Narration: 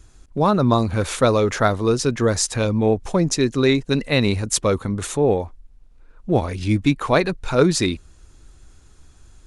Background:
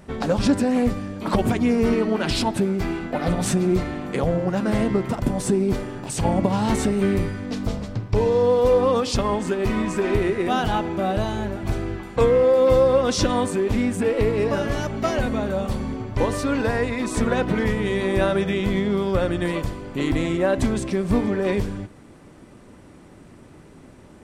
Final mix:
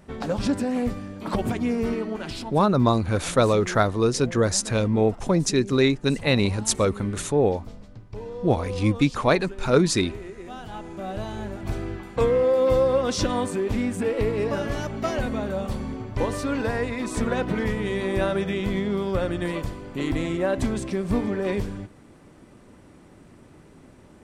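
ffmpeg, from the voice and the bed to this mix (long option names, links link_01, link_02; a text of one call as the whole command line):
ffmpeg -i stem1.wav -i stem2.wav -filter_complex "[0:a]adelay=2150,volume=-2.5dB[link_01];[1:a]volume=8dB,afade=type=out:start_time=1.73:duration=0.93:silence=0.266073,afade=type=in:start_time=10.64:duration=1.2:silence=0.223872[link_02];[link_01][link_02]amix=inputs=2:normalize=0" out.wav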